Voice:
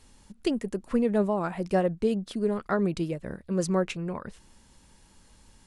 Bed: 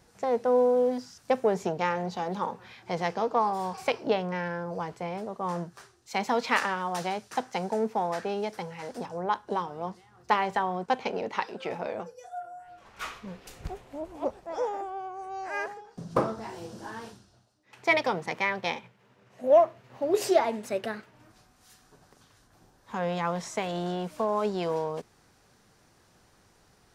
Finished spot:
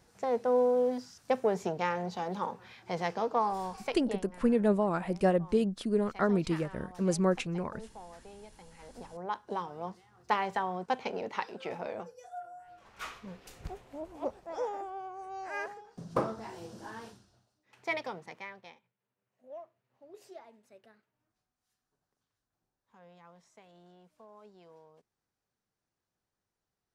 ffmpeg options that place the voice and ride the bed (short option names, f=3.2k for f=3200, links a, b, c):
-filter_complex "[0:a]adelay=3500,volume=-1.5dB[a];[1:a]volume=12dB,afade=t=out:st=3.52:d=0.76:silence=0.149624,afade=t=in:st=8.58:d=1.13:silence=0.16788,afade=t=out:st=17.02:d=1.78:silence=0.0749894[b];[a][b]amix=inputs=2:normalize=0"